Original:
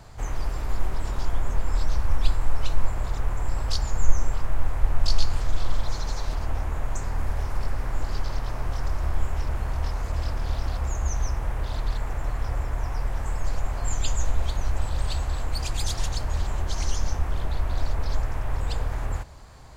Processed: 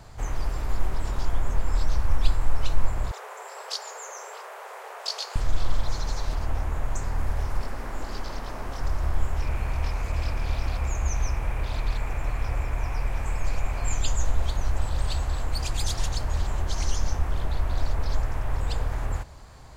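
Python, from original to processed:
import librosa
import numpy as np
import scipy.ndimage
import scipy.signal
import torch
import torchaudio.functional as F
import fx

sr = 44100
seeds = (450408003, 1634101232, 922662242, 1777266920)

y = fx.brickwall_highpass(x, sr, low_hz=380.0, at=(3.11, 5.36))
y = fx.low_shelf_res(y, sr, hz=160.0, db=-6.5, q=1.5, at=(7.61, 8.81))
y = fx.peak_eq(y, sr, hz=2400.0, db=11.5, octaves=0.24, at=(9.42, 14.0))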